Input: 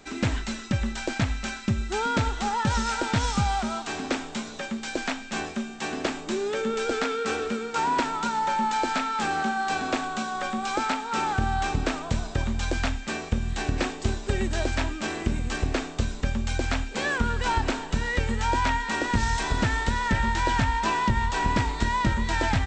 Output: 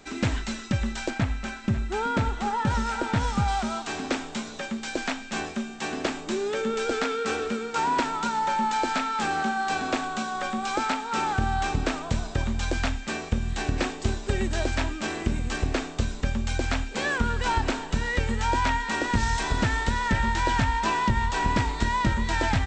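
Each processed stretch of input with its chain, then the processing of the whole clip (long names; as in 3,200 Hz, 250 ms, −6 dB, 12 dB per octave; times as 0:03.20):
0:01.10–0:03.48: parametric band 5,800 Hz −7.5 dB 2.1 octaves + single-tap delay 540 ms −14 dB
whole clip: no processing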